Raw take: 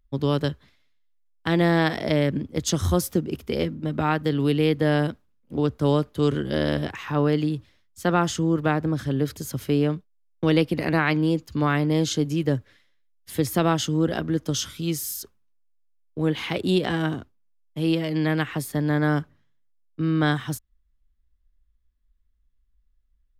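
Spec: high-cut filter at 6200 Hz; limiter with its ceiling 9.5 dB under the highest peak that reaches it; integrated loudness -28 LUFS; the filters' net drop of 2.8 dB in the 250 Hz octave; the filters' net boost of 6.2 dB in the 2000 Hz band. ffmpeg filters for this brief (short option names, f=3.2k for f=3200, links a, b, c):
-af "lowpass=6.2k,equalizer=f=250:t=o:g=-4.5,equalizer=f=2k:t=o:g=8,volume=-1.5dB,alimiter=limit=-14.5dB:level=0:latency=1"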